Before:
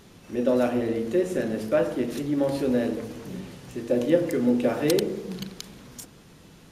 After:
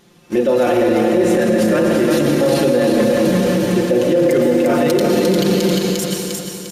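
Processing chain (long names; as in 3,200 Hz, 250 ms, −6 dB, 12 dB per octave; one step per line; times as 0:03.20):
noise gate −40 dBFS, range −20 dB
low-shelf EQ 84 Hz −10 dB
comb filter 5.7 ms, depth 66%
reversed playback
downward compressor 6 to 1, threshold −27 dBFS, peak gain reduction 15.5 dB
reversed playback
repeating echo 351 ms, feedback 42%, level −5 dB
on a send at −3.5 dB: convolution reverb RT60 2.0 s, pre-delay 103 ms
on the sum: boost into a limiter +25 dB
level −5.5 dB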